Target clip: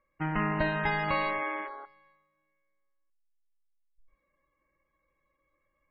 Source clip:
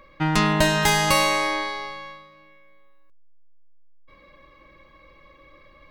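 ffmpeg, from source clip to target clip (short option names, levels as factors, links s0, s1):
-af "afwtdn=0.0398,highshelf=f=2800:t=q:w=1.5:g=-9,volume=0.355" -ar 22050 -c:a libmp3lame -b:a 16k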